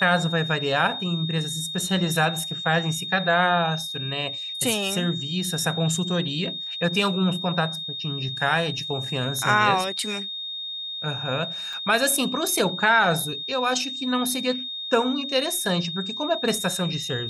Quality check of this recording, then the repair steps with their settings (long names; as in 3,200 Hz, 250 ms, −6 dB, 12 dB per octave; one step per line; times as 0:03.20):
whistle 3,700 Hz −30 dBFS
0:11.73: drop-out 3.3 ms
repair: notch filter 3,700 Hz, Q 30
repair the gap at 0:11.73, 3.3 ms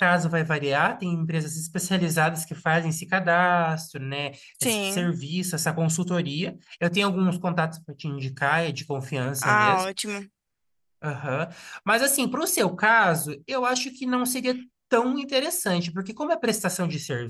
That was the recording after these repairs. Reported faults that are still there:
none of them is left